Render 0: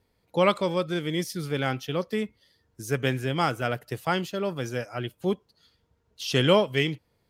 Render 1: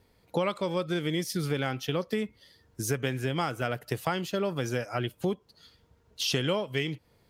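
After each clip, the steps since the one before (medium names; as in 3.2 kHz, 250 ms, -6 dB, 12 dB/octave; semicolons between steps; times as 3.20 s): compression 6:1, threshold -32 dBFS, peak gain reduction 16 dB; trim +6 dB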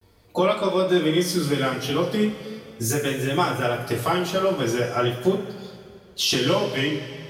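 two-slope reverb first 0.26 s, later 2.5 s, from -18 dB, DRR -6.5 dB; vibrato 0.4 Hz 56 cents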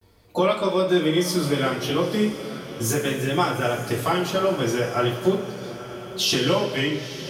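echo that smears into a reverb 947 ms, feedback 44%, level -13.5 dB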